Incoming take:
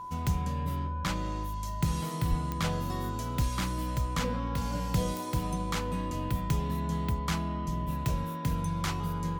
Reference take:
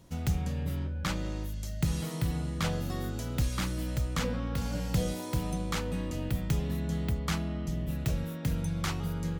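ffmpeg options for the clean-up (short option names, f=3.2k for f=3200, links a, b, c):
-filter_complex "[0:a]adeclick=t=4,bandreject=f=364.5:t=h:w=4,bandreject=f=729:t=h:w=4,bandreject=f=1.0935k:t=h:w=4,bandreject=f=1.458k:t=h:w=4,bandreject=f=1k:w=30,asplit=3[a][b][c];[a]afade=t=out:st=2.29:d=0.02[d];[b]highpass=f=140:w=0.5412,highpass=f=140:w=1.3066,afade=t=in:st=2.29:d=0.02,afade=t=out:st=2.41:d=0.02[e];[c]afade=t=in:st=2.41:d=0.02[f];[d][e][f]amix=inputs=3:normalize=0"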